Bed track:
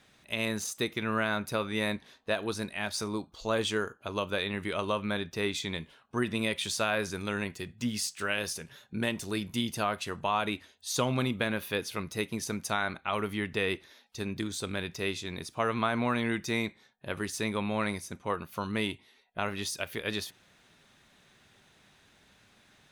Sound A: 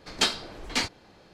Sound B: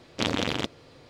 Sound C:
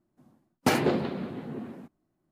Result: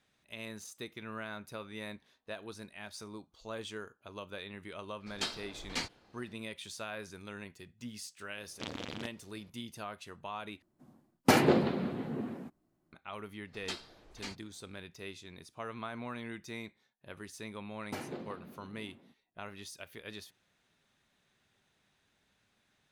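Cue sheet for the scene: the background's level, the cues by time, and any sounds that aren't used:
bed track -12.5 dB
5.00 s: add A -10.5 dB + gain riding
8.41 s: add B -14.5 dB
10.62 s: replace with C
13.47 s: add A -17 dB
17.26 s: add C -17.5 dB

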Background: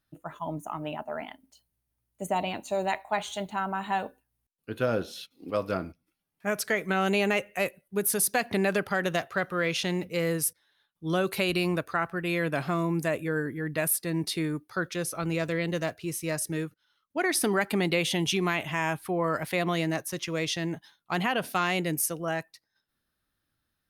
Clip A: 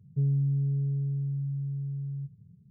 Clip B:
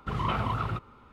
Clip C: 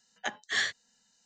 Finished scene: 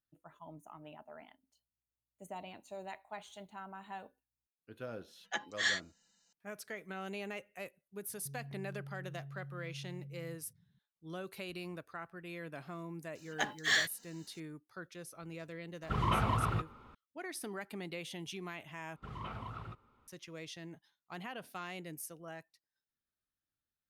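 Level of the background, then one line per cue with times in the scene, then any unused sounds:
background -17 dB
5.08 s: add C -4.5 dB + comb 5.9 ms, depth 52%
8.09 s: add A -14.5 dB + peak limiter -29.5 dBFS
13.15 s: add C -1.5 dB + companding laws mixed up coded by mu
15.83 s: add B -2 dB
18.96 s: replace with B -15 dB

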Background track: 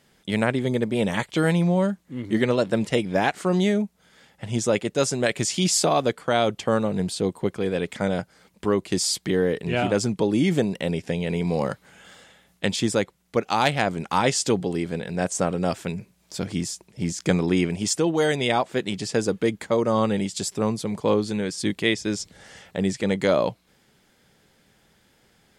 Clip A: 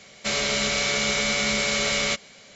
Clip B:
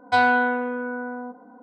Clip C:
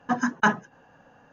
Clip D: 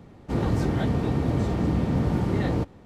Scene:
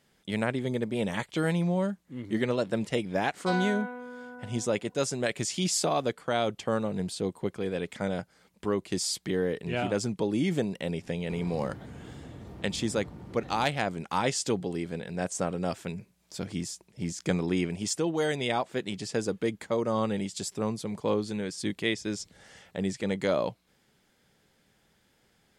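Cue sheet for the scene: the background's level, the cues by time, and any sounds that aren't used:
background track -6.5 dB
3.34 s: add B -14 dB + tone controls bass 0 dB, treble +13 dB
11.01 s: add D -9.5 dB + compression 5:1, threshold -32 dBFS
not used: A, C

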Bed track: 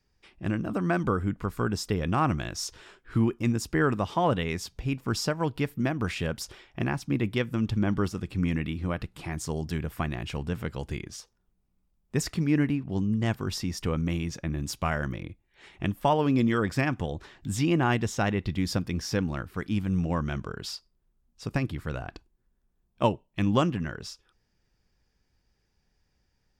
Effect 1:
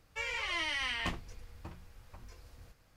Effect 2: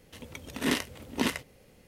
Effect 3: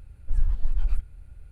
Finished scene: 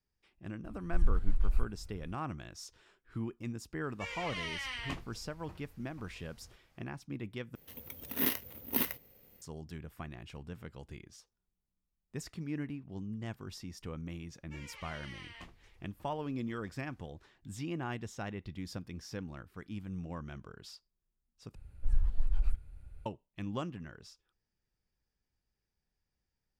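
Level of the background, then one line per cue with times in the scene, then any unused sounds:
bed track -14 dB
0.64 s: add 3 -4.5 dB
3.84 s: add 1 -5 dB
7.55 s: replace with 2 -8 dB + careless resampling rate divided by 3×, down filtered, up zero stuff
14.35 s: add 1 -15 dB
21.55 s: replace with 3 -5.5 dB

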